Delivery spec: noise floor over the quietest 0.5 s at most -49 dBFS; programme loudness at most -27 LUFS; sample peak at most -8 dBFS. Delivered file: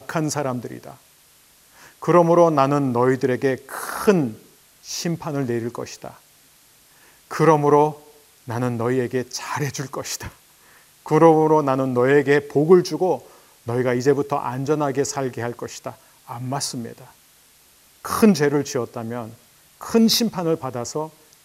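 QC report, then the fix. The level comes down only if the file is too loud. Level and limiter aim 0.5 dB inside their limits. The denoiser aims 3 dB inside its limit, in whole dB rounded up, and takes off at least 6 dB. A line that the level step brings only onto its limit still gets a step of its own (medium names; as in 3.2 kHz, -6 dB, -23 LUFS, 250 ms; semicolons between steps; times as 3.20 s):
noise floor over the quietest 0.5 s -54 dBFS: pass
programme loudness -20.5 LUFS: fail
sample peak -2.5 dBFS: fail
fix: trim -7 dB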